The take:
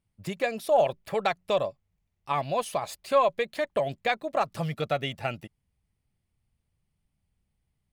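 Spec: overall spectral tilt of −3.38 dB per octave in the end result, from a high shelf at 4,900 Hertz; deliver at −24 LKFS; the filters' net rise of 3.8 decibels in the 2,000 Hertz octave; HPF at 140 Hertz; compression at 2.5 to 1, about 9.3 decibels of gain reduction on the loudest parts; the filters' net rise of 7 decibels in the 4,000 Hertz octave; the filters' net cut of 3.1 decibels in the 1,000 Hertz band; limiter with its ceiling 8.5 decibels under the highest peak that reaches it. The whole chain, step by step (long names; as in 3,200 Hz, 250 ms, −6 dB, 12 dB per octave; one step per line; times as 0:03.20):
high-pass filter 140 Hz
parametric band 1,000 Hz −5.5 dB
parametric band 2,000 Hz +3.5 dB
parametric band 4,000 Hz +6 dB
high-shelf EQ 4,900 Hz +4.5 dB
downward compressor 2.5 to 1, threshold −33 dBFS
level +13 dB
brickwall limiter −11.5 dBFS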